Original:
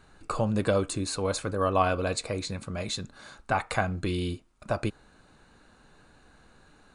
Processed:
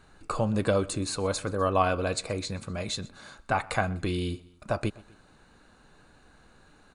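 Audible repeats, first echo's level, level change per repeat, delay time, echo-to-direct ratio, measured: 2, -23.0 dB, -4.5 dB, 125 ms, -21.5 dB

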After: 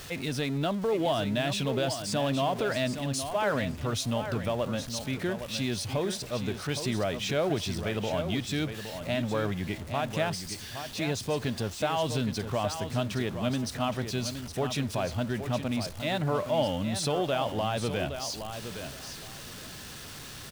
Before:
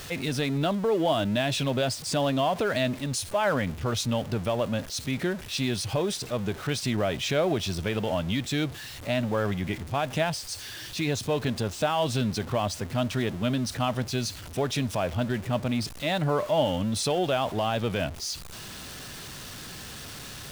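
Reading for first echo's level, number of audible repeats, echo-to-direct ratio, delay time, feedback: -9.0 dB, 2, -9.0 dB, 816 ms, 19%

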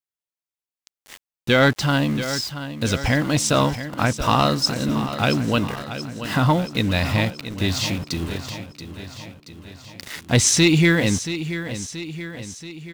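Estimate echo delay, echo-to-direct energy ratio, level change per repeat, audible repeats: 679 ms, -10.0 dB, -5.0 dB, 5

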